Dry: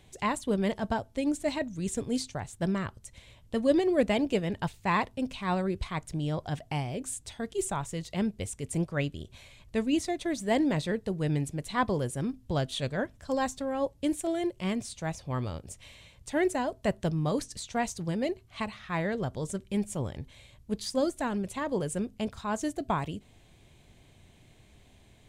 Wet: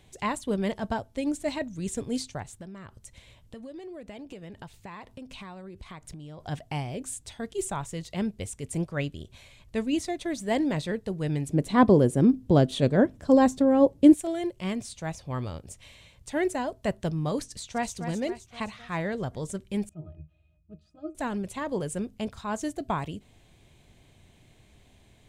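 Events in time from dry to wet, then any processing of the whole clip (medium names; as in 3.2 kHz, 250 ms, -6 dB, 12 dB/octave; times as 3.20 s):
2.42–6.40 s: compression 16:1, threshold -38 dBFS
11.50–14.14 s: peaking EQ 290 Hz +14 dB 2.6 oct
17.47–17.94 s: echo throw 260 ms, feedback 55%, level -9 dB
19.89–21.15 s: pitch-class resonator D#, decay 0.16 s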